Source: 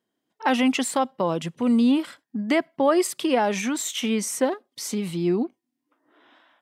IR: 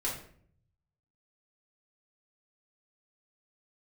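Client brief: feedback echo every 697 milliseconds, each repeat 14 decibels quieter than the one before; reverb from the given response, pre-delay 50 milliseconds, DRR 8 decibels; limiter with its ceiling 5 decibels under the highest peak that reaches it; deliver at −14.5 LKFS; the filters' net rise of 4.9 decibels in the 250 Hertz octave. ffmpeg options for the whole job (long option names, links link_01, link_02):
-filter_complex "[0:a]equalizer=frequency=250:width_type=o:gain=5.5,alimiter=limit=-11.5dB:level=0:latency=1,aecho=1:1:697|1394:0.2|0.0399,asplit=2[link_01][link_02];[1:a]atrim=start_sample=2205,adelay=50[link_03];[link_02][link_03]afir=irnorm=-1:irlink=0,volume=-12.5dB[link_04];[link_01][link_04]amix=inputs=2:normalize=0,volume=6.5dB"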